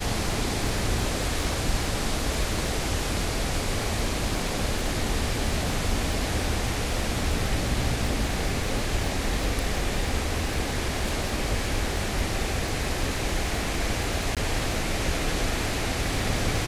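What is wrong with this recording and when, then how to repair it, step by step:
surface crackle 48 per second −31 dBFS
0:14.35–0:14.37: drop-out 17 ms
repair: click removal
repair the gap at 0:14.35, 17 ms

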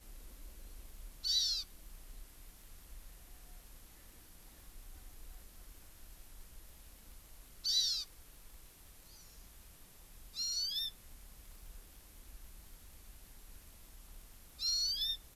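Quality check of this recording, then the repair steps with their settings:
surface crackle 33 per second −50 dBFS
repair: click removal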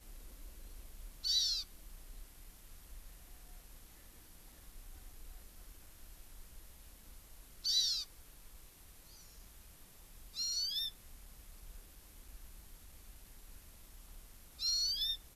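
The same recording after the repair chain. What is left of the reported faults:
none of them is left

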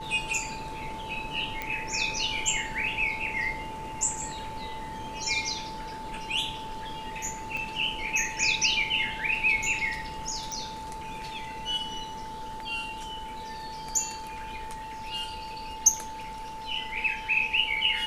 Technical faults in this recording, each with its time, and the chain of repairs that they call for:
whistle 880 Hz −37 dBFS
0:01.62: click −17 dBFS
0:07.57: click −22 dBFS
0:10.52: click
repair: click removal
notch filter 880 Hz, Q 30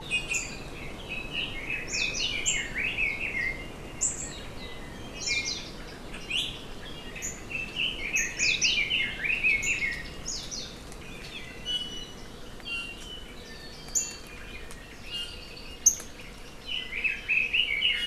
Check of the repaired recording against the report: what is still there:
0:07.57: click
0:10.52: click

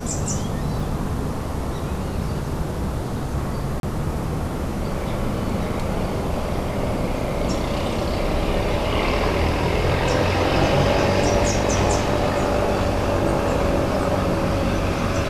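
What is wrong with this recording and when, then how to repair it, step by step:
0:00.80: drop-out 3.5 ms
0:03.80–0:03.83: drop-out 32 ms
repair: repair the gap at 0:00.80, 3.5 ms
repair the gap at 0:03.80, 32 ms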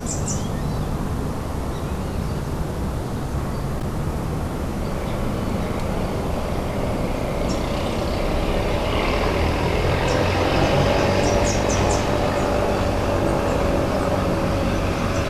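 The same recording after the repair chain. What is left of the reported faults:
none of them is left

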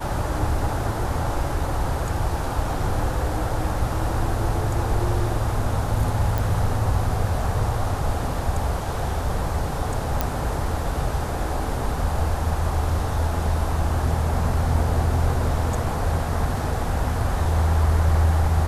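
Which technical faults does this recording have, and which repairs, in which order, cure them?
0:06.38: click
0:10.21: click −7 dBFS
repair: click removal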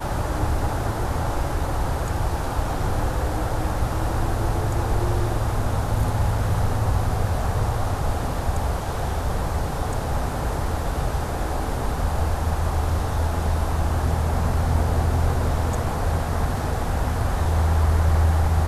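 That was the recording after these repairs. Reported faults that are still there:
0:06.38: click

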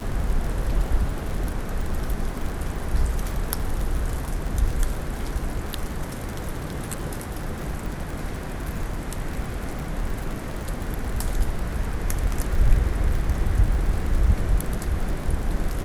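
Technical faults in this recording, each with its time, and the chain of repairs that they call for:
surface crackle 41 per second −28 dBFS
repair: click removal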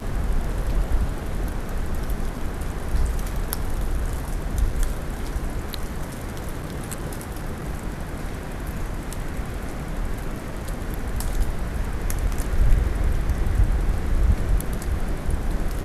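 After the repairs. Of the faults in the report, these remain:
none of them is left

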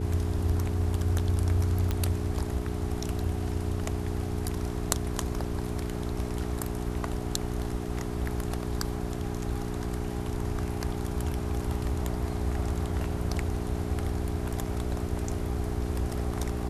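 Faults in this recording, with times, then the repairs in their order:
mains hum 60 Hz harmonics 7 −34 dBFS
0:01.91: click −15 dBFS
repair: click removal
hum removal 60 Hz, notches 7

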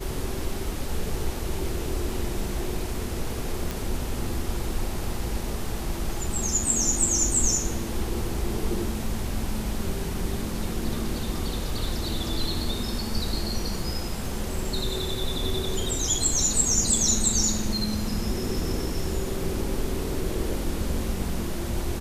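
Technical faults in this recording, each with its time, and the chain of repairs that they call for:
0:03.71: click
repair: click removal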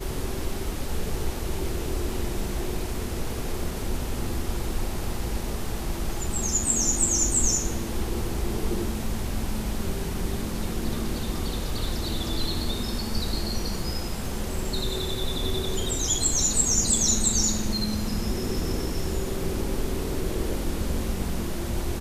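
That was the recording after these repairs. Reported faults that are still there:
none of them is left

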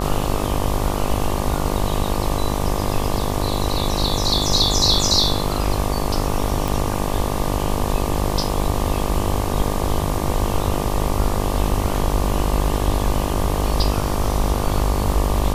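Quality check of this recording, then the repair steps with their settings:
mains buzz 50 Hz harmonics 24 −24 dBFS
0:06.68: click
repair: click removal
hum removal 50 Hz, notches 24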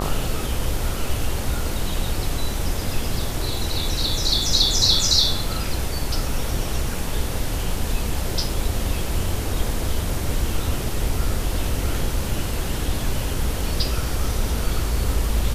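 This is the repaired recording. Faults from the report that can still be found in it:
none of them is left

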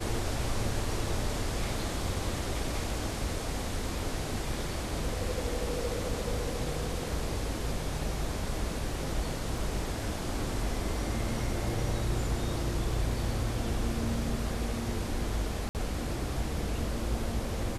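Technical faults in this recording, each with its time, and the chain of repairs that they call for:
0:09.58: drop-out 2.5 ms
0:15.69–0:15.75: drop-out 58 ms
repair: repair the gap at 0:09.58, 2.5 ms
repair the gap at 0:15.69, 58 ms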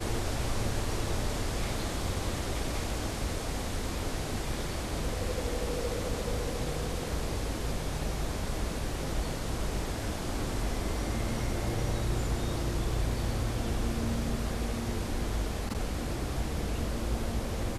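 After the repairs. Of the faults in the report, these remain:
none of them is left

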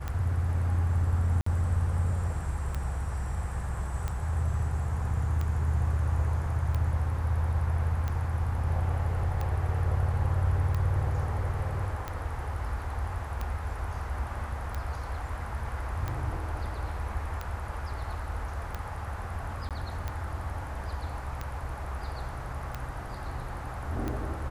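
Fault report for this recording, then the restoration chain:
scratch tick 45 rpm −20 dBFS
0:01.41–0:01.46: drop-out 54 ms
0:19.69–0:19.71: drop-out 17 ms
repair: click removal
repair the gap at 0:01.41, 54 ms
repair the gap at 0:19.69, 17 ms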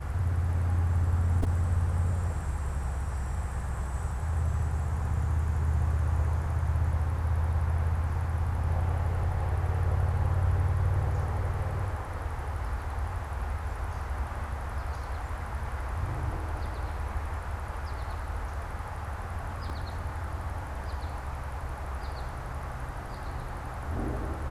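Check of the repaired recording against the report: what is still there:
none of them is left

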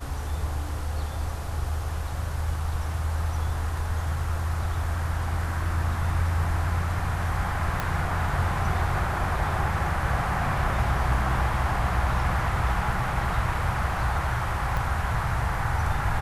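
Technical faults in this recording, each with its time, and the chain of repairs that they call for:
0:07.80: click −13 dBFS
0:14.77: click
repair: click removal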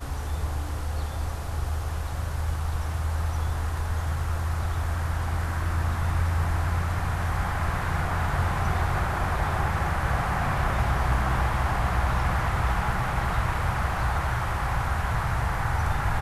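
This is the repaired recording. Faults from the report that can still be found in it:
0:14.77: click

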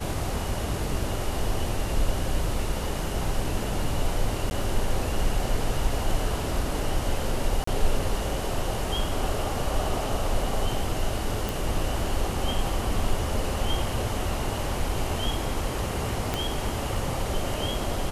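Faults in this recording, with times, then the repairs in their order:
0:04.50–0:04.51: drop-out 10 ms
0:07.64–0:07.67: drop-out 34 ms
0:11.49: click
0:16.34: click −12 dBFS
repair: click removal
repair the gap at 0:04.50, 10 ms
repair the gap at 0:07.64, 34 ms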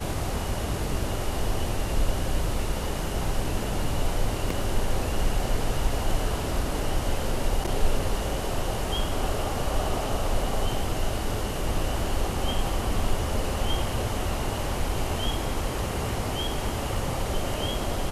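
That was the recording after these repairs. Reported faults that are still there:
0:16.34: click

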